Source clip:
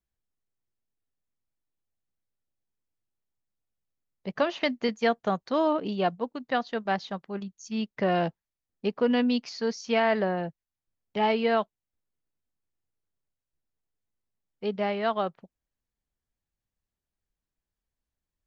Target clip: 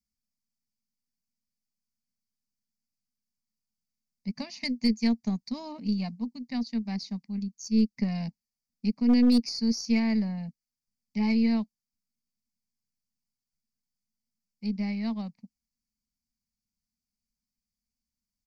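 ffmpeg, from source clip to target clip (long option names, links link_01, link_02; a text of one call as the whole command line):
ffmpeg -i in.wav -af "firequalizer=gain_entry='entry(140,0);entry(230,15);entry(340,-19);entry(930,-8);entry(1400,-22);entry(2200,4);entry(3200,-14);entry(4600,14);entry(8400,5)':delay=0.05:min_phase=1,aeval=exprs='0.282*(cos(1*acos(clip(val(0)/0.282,-1,1)))-cos(1*PI/2))+0.0447*(cos(2*acos(clip(val(0)/0.282,-1,1)))-cos(2*PI/2))':channel_layout=same,volume=-5.5dB" out.wav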